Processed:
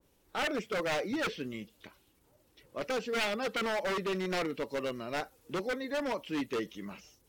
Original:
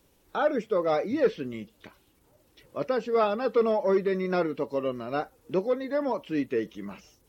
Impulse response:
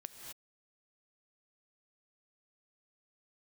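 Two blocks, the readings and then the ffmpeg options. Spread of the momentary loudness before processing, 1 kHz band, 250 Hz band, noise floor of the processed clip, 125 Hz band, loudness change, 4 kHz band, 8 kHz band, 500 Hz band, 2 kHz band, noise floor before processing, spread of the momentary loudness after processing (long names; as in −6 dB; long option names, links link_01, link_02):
13 LU, −5.5 dB, −6.0 dB, −69 dBFS, −5.5 dB, −6.5 dB, +6.0 dB, can't be measured, −9.0 dB, +2.5 dB, −65 dBFS, 10 LU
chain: -af "aeval=exprs='0.0708*(abs(mod(val(0)/0.0708+3,4)-2)-1)':channel_layout=same,adynamicequalizer=threshold=0.00501:dfrequency=1800:dqfactor=0.7:tfrequency=1800:tqfactor=0.7:attack=5:release=100:ratio=0.375:range=3.5:mode=boostabove:tftype=highshelf,volume=-4.5dB"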